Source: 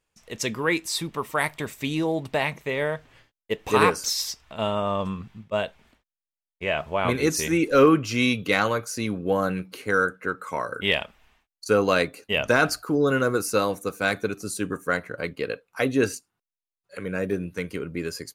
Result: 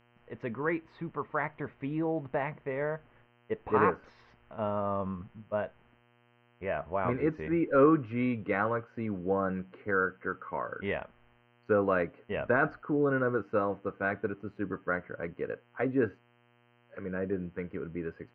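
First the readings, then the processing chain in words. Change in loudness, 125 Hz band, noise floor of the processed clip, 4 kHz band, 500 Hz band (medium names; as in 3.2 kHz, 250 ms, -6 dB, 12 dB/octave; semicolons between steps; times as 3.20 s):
-7.0 dB, -6.0 dB, -66 dBFS, under -25 dB, -6.0 dB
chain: low-pass 1.8 kHz 24 dB/octave; mains buzz 120 Hz, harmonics 26, -60 dBFS -3 dB/octave; trim -6 dB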